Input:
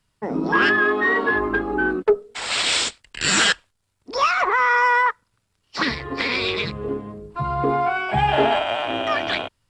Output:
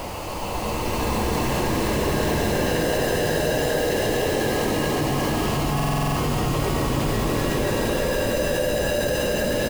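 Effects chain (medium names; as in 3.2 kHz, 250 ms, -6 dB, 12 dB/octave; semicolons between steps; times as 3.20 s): jump at every zero crossing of -21.5 dBFS; high-pass 780 Hz 24 dB/octave; decimation with a swept rate 31×, swing 60% 1.7 Hz; on a send: delay 534 ms -10 dB; on the sum: Paulstretch 9.2×, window 0.50 s, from 0.36 s; modulation noise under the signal 21 dB; in parallel at -1 dB: compressor with a negative ratio -21 dBFS, ratio -1; on the sum: buffer glitch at 5.75 s, samples 2048, times 8; trim -8.5 dB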